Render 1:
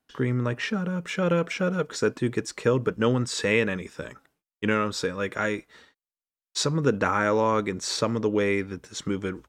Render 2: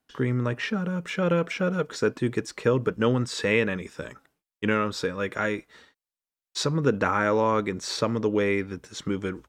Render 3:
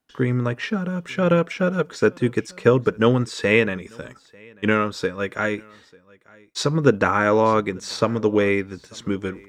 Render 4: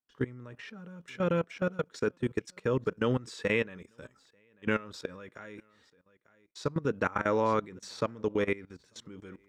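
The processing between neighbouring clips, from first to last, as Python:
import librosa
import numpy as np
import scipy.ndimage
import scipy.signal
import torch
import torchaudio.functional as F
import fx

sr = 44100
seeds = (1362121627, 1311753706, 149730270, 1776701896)

y1 = fx.dynamic_eq(x, sr, hz=7600.0, q=1.1, threshold_db=-47.0, ratio=4.0, max_db=-5)
y2 = y1 + 10.0 ** (-22.5 / 20.0) * np.pad(y1, (int(893 * sr / 1000.0), 0))[:len(y1)]
y2 = fx.upward_expand(y2, sr, threshold_db=-33.0, expansion=1.5)
y2 = y2 * librosa.db_to_amplitude(7.5)
y3 = fx.level_steps(y2, sr, step_db=19)
y3 = y3 * librosa.db_to_amplitude(-7.5)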